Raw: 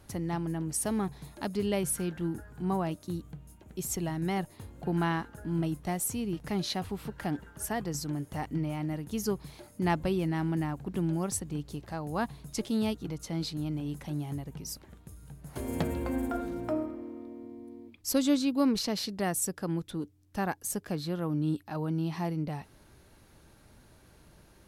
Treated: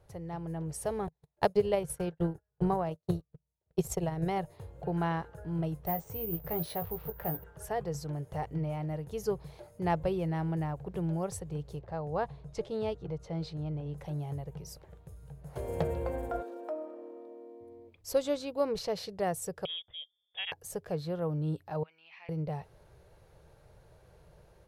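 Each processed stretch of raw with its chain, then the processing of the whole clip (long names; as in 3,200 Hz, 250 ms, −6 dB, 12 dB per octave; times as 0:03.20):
0:01.07–0:04.41: noise gate −40 dBFS, range −24 dB + transient designer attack +12 dB, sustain −11 dB
0:05.86–0:07.44: high-shelf EQ 3,400 Hz −9.5 dB + double-tracking delay 18 ms −7.5 dB + bad sample-rate conversion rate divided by 3×, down filtered, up zero stuff
0:11.79–0:13.98: high-frequency loss of the air 66 metres + one half of a high-frequency compander decoder only
0:16.42–0:17.61: downward compressor 2 to 1, threshold −37 dBFS + linear-phase brick-wall high-pass 220 Hz + notch filter 2,100 Hz, Q 16
0:19.65–0:20.52: voice inversion scrambler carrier 3,500 Hz + expander for the loud parts, over −49 dBFS
0:21.83–0:22.29: high-pass with resonance 2,400 Hz, resonance Q 5.6 + head-to-tape spacing loss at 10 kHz 30 dB
whole clip: automatic gain control gain up to 6 dB; drawn EQ curve 160 Hz 0 dB, 250 Hz −17 dB, 470 Hz +6 dB, 1,200 Hz −4 dB, 9,000 Hz −10 dB; level −6 dB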